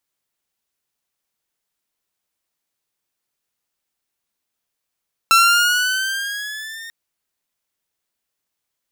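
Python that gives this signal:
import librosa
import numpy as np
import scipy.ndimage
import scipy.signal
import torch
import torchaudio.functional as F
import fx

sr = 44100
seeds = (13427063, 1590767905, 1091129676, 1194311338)

y = fx.riser_tone(sr, length_s=1.59, level_db=-6, wave='saw', hz=1340.0, rise_st=5.5, swell_db=-23.5)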